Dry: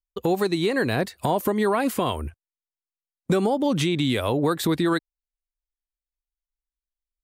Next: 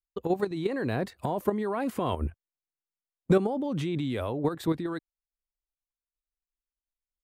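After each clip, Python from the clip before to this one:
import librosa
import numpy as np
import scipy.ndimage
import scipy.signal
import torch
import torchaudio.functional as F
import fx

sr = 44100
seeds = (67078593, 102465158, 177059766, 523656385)

y = fx.level_steps(x, sr, step_db=10)
y = fx.high_shelf(y, sr, hz=2300.0, db=-11.5)
y = fx.rider(y, sr, range_db=10, speed_s=0.5)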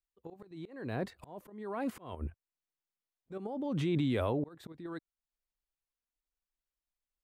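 y = fx.high_shelf(x, sr, hz=5100.0, db=-5.5)
y = fx.auto_swell(y, sr, attack_ms=641.0)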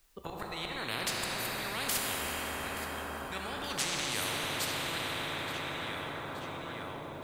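y = fx.echo_feedback(x, sr, ms=874, feedback_pct=47, wet_db=-16.5)
y = fx.rev_plate(y, sr, seeds[0], rt60_s=4.3, hf_ratio=0.8, predelay_ms=0, drr_db=0.5)
y = fx.spectral_comp(y, sr, ratio=10.0)
y = y * librosa.db_to_amplitude(-1.5)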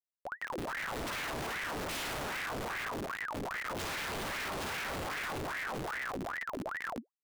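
y = fx.room_flutter(x, sr, wall_m=9.4, rt60_s=0.86)
y = fx.schmitt(y, sr, flips_db=-30.0)
y = fx.ring_lfo(y, sr, carrier_hz=1100.0, swing_pct=80, hz=2.5)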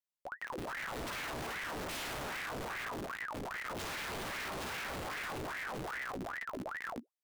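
y = fx.doubler(x, sr, ms=16.0, db=-13.5)
y = y * librosa.db_to_amplitude(-3.0)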